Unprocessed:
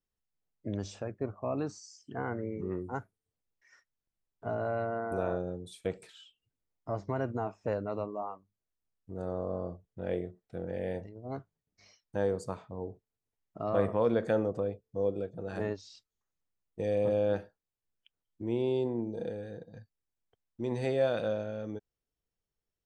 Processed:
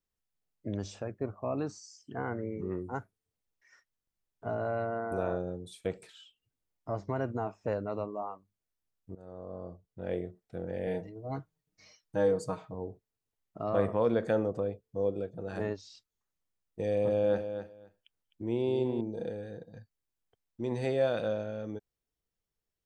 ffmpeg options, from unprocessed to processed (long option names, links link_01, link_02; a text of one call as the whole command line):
ffmpeg -i in.wav -filter_complex "[0:a]asettb=1/sr,asplit=3[link_01][link_02][link_03];[link_01]atrim=end=10.864[link_04];[link_02]atrim=start=10.86:end=12.74,asetpts=PTS-STARTPTS,afade=type=in:duration=0.004:curve=qsin,afade=type=out:start_time=1.876:duration=0.004:curve=qsin,aecho=1:1:6.4:0.83,atrim=end_sample=82908[link_05];[link_03]atrim=start=12.736[link_06];[link_04][link_05]acrossfade=duration=0.004:curve1=hsin:curve2=qsin[link_07];[link_07][link_06]acrossfade=duration=0.004:curve1=qsin:curve2=hsin,asettb=1/sr,asplit=3[link_08][link_09][link_10];[link_08]atrim=end=16.984[link_11];[link_09]atrim=start=16.98:end=19.01,asetpts=PTS-STARTPTS,afade=type=in:duration=0.004:curve=qsin,afade=type=out:start_time=2.026:duration=0.004:curve=qsin,aecho=1:1:257|514:0.355|0.0568,atrim=end_sample=89523[link_12];[link_10]atrim=start=19.006[link_13];[link_11][link_12]acrossfade=duration=0.004:curve1=hsin:curve2=qsin[link_14];[link_14][link_13]acrossfade=duration=0.004:curve1=qsin:curve2=hsin,asplit=2[link_15][link_16];[link_15]atrim=end=9.15,asetpts=PTS-STARTPTS,afade=type=out:start_time=9.146:duration=0.004:curve=hsin:silence=0.141254[link_17];[link_16]atrim=start=9.15,asetpts=PTS-STARTPTS,afade=type=in:duration=1.1:silence=0.141254[link_18];[link_17][link_18]concat=n=2:v=0:a=1" out.wav